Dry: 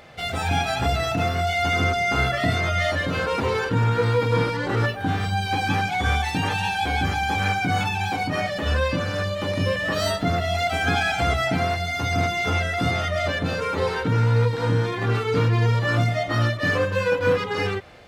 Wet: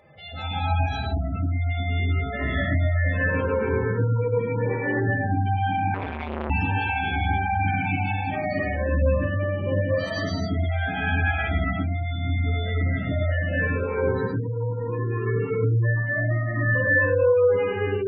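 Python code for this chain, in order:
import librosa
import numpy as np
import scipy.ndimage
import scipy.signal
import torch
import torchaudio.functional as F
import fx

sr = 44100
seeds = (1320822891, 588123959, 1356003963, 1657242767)

y = fx.spec_expand(x, sr, power=1.7)
y = fx.spacing_loss(y, sr, db_at_10k=43, at=(0.76, 1.32), fade=0.02)
y = fx.highpass(y, sr, hz=210.0, slope=6, at=(14.17, 14.87), fade=0.02)
y = fx.hum_notches(y, sr, base_hz=60, count=8)
y = fx.echo_multitap(y, sr, ms=(49, 106), db=(-5.5, -5.5))
y = fx.rev_gated(y, sr, seeds[0], gate_ms=300, shape='rising', drr_db=-5.0)
y = fx.spec_gate(y, sr, threshold_db=-25, keep='strong')
y = fx.peak_eq(y, sr, hz=1400.0, db=-2.5, octaves=0.77)
y = fx.notch_comb(y, sr, f0_hz=710.0)
y = fx.transformer_sat(y, sr, knee_hz=880.0, at=(5.94, 6.5))
y = F.gain(torch.from_numpy(y), -6.5).numpy()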